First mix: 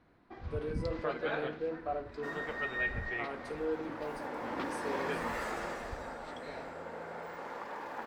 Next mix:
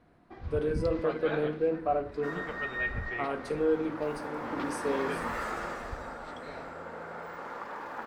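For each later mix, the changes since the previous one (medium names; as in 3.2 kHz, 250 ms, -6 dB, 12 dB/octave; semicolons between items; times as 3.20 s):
speech +7.5 dB; second sound: add peaking EQ 1.3 kHz +6.5 dB 0.51 oct; master: add bass shelf 220 Hz +4 dB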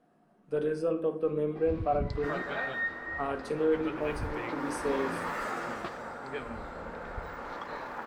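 first sound: entry +1.25 s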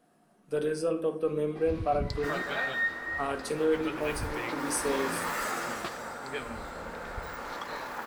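master: remove low-pass 1.7 kHz 6 dB/octave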